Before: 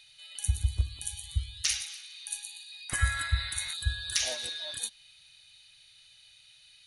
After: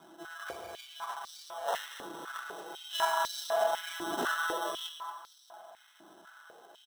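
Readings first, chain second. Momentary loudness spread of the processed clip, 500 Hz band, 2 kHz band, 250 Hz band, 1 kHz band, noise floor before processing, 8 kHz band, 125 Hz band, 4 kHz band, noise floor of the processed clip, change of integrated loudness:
23 LU, +14.5 dB, -0.5 dB, +11.5 dB, +14.0 dB, -58 dBFS, -11.5 dB, under -25 dB, -5.5 dB, -61 dBFS, -3.0 dB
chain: harmonic-percussive separation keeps harmonic; treble shelf 10 kHz +9 dB; sample-and-hold 19×; feedback delay 231 ms, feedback 45%, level -10.5 dB; step-sequenced high-pass 4 Hz 310–4500 Hz

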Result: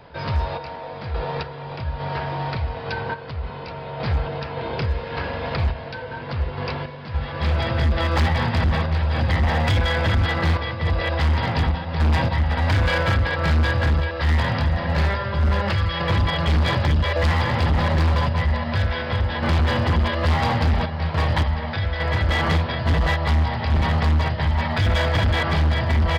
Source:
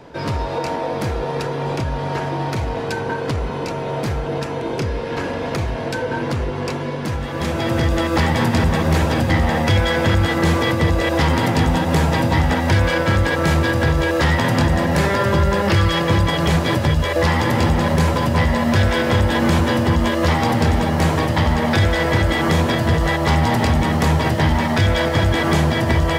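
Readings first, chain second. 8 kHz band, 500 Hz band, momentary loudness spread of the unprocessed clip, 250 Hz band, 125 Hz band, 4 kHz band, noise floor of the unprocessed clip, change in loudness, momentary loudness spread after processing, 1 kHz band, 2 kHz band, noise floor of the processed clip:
-13.5 dB, -7.0 dB, 7 LU, -9.0 dB, -2.0 dB, -3.5 dB, -25 dBFS, -3.5 dB, 9 LU, -4.5 dB, -4.0 dB, -34 dBFS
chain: random-step tremolo, depth 65%; peaking EQ 74 Hz +12 dB 0.23 oct; resampled via 11.025 kHz; peaking EQ 310 Hz -11 dB 1 oct; hard clipper -15 dBFS, distortion -11 dB

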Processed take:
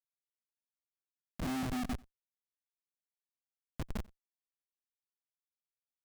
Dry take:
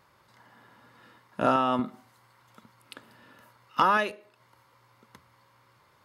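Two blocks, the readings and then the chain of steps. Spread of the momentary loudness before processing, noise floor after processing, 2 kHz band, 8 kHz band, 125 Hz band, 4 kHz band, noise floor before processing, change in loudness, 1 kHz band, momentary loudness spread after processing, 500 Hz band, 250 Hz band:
13 LU, under -85 dBFS, -17.0 dB, no reading, -1.5 dB, -11.0 dB, -64 dBFS, -13.5 dB, -21.0 dB, 18 LU, -19.5 dB, -6.5 dB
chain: chunks repeated in reverse 103 ms, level -6.5 dB; inverse Chebyshev low-pass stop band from 1.7 kHz, stop band 80 dB; peaking EQ 130 Hz -7.5 dB 0.26 oct; Schmitt trigger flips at -34 dBFS; on a send: delay 91 ms -23.5 dB; on the sum: upward expansion 1.5:1, over -44 dBFS; trim +7 dB

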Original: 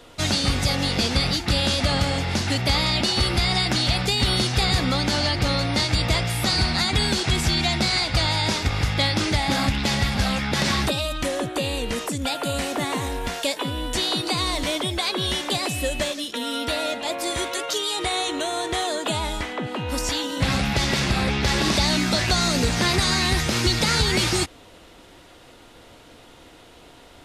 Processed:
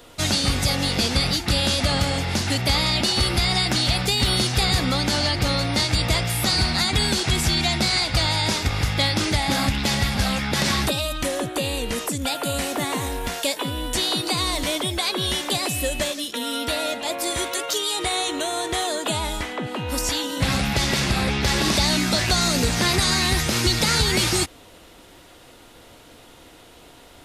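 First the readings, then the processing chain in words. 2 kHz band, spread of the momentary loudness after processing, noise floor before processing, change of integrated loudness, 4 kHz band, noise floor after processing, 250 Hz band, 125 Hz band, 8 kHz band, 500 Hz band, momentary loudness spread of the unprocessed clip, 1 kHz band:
+0.5 dB, 6 LU, -48 dBFS, +1.0 dB, +1.0 dB, -48 dBFS, 0.0 dB, 0.0 dB, +3.5 dB, 0.0 dB, 6 LU, 0.0 dB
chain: treble shelf 11 kHz +12 dB

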